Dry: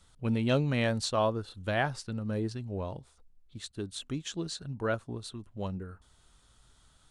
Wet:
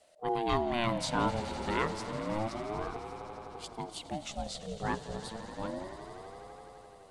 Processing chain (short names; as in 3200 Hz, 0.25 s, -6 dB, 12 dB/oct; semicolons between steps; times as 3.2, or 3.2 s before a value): swelling echo 85 ms, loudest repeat 5, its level -16 dB; ring modulator with a swept carrier 460 Hz, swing 35%, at 0.3 Hz